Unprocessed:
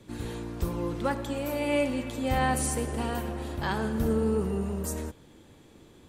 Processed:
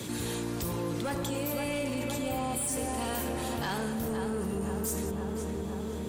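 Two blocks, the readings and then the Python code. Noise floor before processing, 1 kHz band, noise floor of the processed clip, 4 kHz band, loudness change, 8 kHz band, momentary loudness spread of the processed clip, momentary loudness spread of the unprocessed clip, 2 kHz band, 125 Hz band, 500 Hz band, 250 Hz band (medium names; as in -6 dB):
-55 dBFS, -3.5 dB, -35 dBFS, +1.5 dB, -3.0 dB, +2.0 dB, 4 LU, 9 LU, -3.5 dB, -3.0 dB, -3.0 dB, -2.0 dB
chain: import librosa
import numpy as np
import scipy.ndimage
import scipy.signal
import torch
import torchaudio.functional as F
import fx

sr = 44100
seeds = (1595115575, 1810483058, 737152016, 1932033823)

p1 = fx.spec_repair(x, sr, seeds[0], start_s=2.29, length_s=0.36, low_hz=1300.0, high_hz=7300.0, source='before')
p2 = scipy.signal.sosfilt(scipy.signal.butter(2, 89.0, 'highpass', fs=sr, output='sos'), p1)
p3 = fx.high_shelf(p2, sr, hz=4000.0, db=12.0)
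p4 = fx.rider(p3, sr, range_db=3, speed_s=0.5)
p5 = 10.0 ** (-23.0 / 20.0) * np.tanh(p4 / 10.0 ** (-23.0 / 20.0))
p6 = p5 + fx.echo_filtered(p5, sr, ms=514, feedback_pct=61, hz=2100.0, wet_db=-5, dry=0)
p7 = fx.env_flatten(p6, sr, amount_pct=70)
y = F.gain(torch.from_numpy(p7), -5.5).numpy()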